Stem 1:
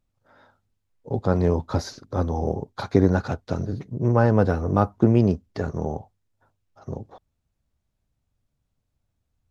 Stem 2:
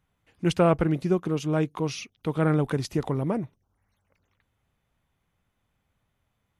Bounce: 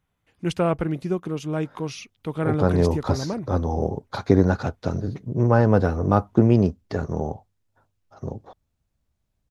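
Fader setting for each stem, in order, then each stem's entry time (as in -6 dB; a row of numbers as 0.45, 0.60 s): +1.0, -1.5 dB; 1.35, 0.00 s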